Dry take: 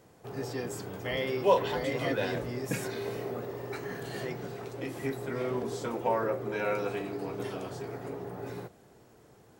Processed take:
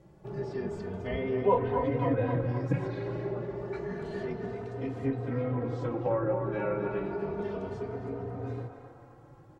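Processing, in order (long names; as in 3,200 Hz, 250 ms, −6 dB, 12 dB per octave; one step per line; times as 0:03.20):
treble cut that deepens with the level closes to 1,900 Hz, closed at −26.5 dBFS
spectral tilt −3 dB per octave
feedback echo with a band-pass in the loop 261 ms, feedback 66%, band-pass 1,100 Hz, level −5 dB
barber-pole flanger 3.1 ms +0.3 Hz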